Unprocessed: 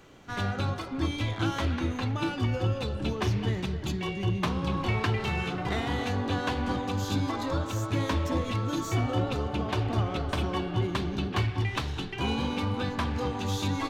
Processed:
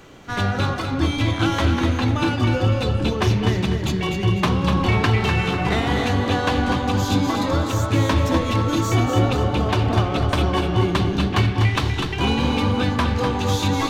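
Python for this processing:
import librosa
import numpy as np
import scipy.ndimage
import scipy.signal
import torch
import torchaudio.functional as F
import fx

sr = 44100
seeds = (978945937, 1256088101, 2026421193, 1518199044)

y = fx.echo_feedback(x, sr, ms=248, feedback_pct=33, wet_db=-6.5)
y = y * librosa.db_to_amplitude(8.5)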